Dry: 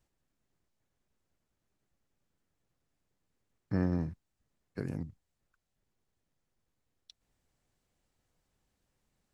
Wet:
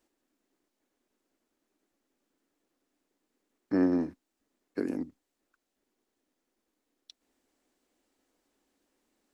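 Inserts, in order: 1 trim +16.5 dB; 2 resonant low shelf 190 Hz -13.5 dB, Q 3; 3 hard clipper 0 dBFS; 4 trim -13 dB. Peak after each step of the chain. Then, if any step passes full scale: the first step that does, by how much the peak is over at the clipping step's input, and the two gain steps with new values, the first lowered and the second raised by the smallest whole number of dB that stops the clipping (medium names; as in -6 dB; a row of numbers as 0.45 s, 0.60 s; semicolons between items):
-2.0 dBFS, -2.0 dBFS, -2.0 dBFS, -15.0 dBFS; nothing clips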